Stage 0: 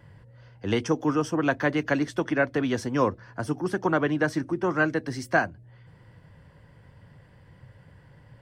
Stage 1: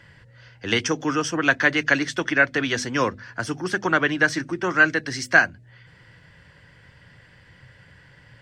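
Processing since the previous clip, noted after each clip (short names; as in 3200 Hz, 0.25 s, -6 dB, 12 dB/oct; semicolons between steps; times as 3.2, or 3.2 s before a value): band shelf 3300 Hz +11 dB 2.8 oct; notches 50/100/150/200/250 Hz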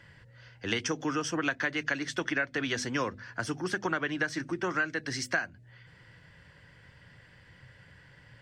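compressor 6:1, threshold -22 dBFS, peak gain reduction 12 dB; gain -4.5 dB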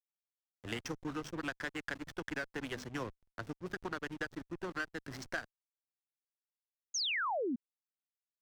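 backlash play -27 dBFS; tube stage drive 19 dB, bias 0.45; painted sound fall, 6.94–7.56, 220–6800 Hz -29 dBFS; gain -5.5 dB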